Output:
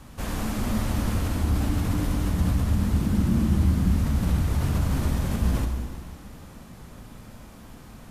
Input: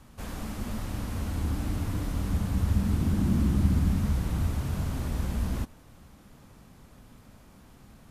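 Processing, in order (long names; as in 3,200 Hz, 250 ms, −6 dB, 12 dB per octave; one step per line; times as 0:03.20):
in parallel at −3 dB: compressor whose output falls as the input rises −32 dBFS
on the sum: dense smooth reverb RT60 2.2 s, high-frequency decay 0.9×, DRR 3.5 dB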